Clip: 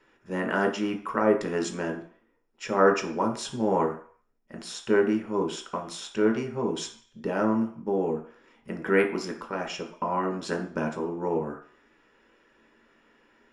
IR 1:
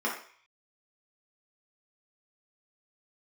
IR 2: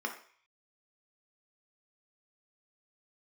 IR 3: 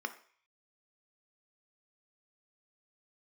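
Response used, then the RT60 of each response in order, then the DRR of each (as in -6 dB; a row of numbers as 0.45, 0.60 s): 2; 0.50, 0.50, 0.50 s; -5.0, 2.0, 7.5 dB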